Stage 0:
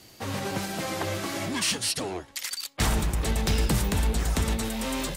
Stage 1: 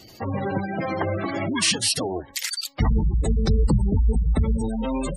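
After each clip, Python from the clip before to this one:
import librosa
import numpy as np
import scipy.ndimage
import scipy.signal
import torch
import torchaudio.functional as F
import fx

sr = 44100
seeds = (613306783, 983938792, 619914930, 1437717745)

y = fx.spec_gate(x, sr, threshold_db=-15, keep='strong')
y = F.gain(torch.from_numpy(y), 6.0).numpy()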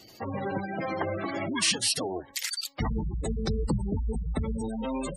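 y = fx.low_shelf(x, sr, hz=130.0, db=-8.5)
y = F.gain(torch.from_numpy(y), -4.0).numpy()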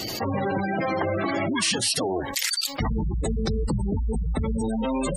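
y = fx.env_flatten(x, sr, amount_pct=70)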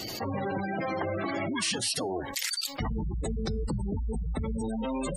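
y = fx.comb_fb(x, sr, f0_hz=740.0, decay_s=0.23, harmonics='all', damping=0.0, mix_pct=40)
y = F.gain(torch.from_numpy(y), -1.5).numpy()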